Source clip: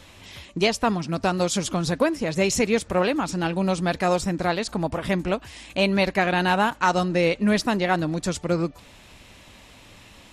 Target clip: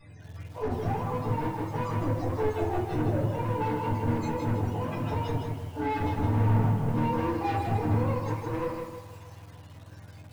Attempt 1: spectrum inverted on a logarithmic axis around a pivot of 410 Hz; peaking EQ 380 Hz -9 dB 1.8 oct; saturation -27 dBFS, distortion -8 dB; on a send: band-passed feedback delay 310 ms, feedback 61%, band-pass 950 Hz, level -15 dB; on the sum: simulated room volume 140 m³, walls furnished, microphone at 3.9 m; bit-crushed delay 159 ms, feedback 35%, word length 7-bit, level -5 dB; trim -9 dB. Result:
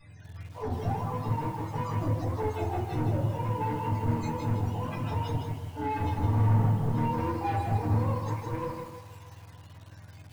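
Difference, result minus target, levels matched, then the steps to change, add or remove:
500 Hz band -3.0 dB
change: peaking EQ 380 Hz -2 dB 1.8 oct

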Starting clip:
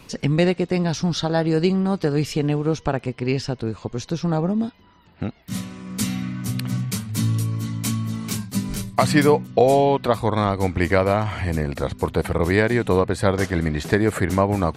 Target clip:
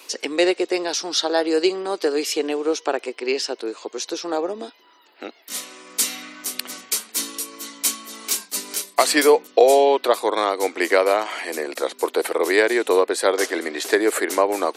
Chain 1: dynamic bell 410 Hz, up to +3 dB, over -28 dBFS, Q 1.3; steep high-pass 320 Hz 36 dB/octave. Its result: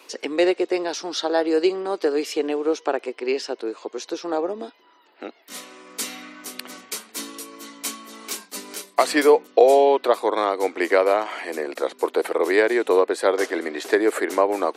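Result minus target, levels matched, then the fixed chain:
8 kHz band -8.0 dB
dynamic bell 410 Hz, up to +3 dB, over -28 dBFS, Q 1.3; steep high-pass 320 Hz 36 dB/octave; treble shelf 3.1 kHz +10 dB

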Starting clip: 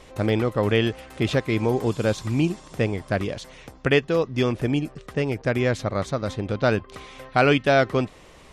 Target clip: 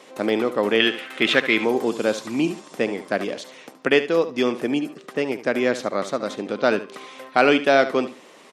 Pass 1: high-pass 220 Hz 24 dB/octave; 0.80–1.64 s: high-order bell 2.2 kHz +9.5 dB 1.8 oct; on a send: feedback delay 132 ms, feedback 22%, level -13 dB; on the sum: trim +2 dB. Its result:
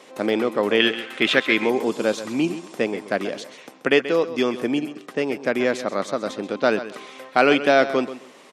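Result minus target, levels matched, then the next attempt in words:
echo 60 ms late
high-pass 220 Hz 24 dB/octave; 0.80–1.64 s: high-order bell 2.2 kHz +9.5 dB 1.8 oct; on a send: feedback delay 72 ms, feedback 22%, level -13 dB; on the sum: trim +2 dB

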